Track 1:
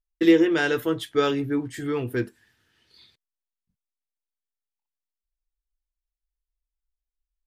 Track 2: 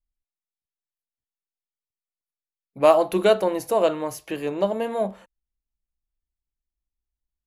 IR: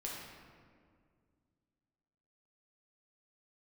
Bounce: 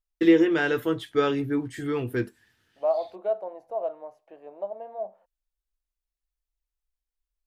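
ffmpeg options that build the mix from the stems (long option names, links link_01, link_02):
-filter_complex "[0:a]acrossover=split=3100[link_01][link_02];[link_02]acompressor=threshold=-43dB:ratio=4:attack=1:release=60[link_03];[link_01][link_03]amix=inputs=2:normalize=0,volume=-1dB[link_04];[1:a]bandpass=frequency=680:width_type=q:width=3.9:csg=0,volume=-6.5dB[link_05];[link_04][link_05]amix=inputs=2:normalize=0"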